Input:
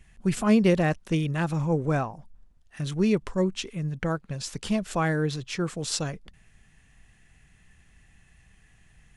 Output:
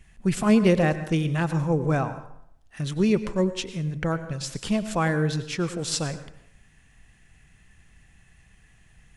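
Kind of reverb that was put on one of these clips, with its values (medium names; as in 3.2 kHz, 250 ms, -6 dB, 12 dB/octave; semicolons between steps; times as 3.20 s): plate-style reverb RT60 0.7 s, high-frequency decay 0.7×, pre-delay 85 ms, DRR 12 dB; trim +1.5 dB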